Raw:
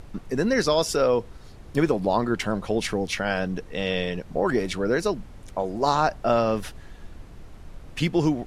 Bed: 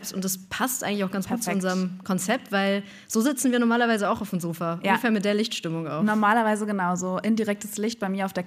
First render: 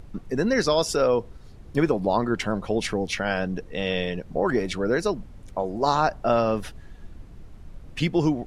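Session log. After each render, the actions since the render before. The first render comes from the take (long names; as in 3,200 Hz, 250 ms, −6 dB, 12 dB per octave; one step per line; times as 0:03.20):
broadband denoise 6 dB, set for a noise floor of −44 dBFS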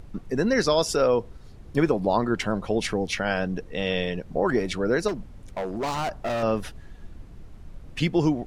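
0:05.08–0:06.43: hard clipping −24.5 dBFS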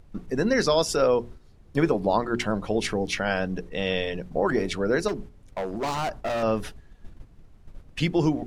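noise gate −38 dBFS, range −8 dB
mains-hum notches 60/120/180/240/300/360/420 Hz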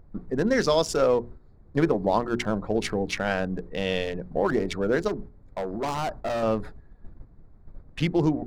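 adaptive Wiener filter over 15 samples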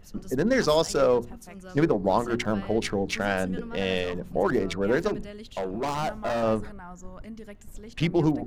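mix in bed −18.5 dB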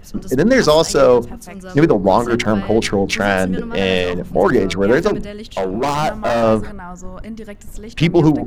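level +10.5 dB
brickwall limiter −1 dBFS, peak gain reduction 1.5 dB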